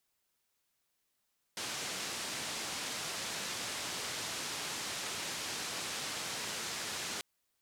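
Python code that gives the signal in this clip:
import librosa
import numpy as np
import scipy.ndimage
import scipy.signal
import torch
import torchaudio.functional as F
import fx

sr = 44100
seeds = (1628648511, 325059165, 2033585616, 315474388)

y = fx.band_noise(sr, seeds[0], length_s=5.64, low_hz=100.0, high_hz=6900.0, level_db=-39.5)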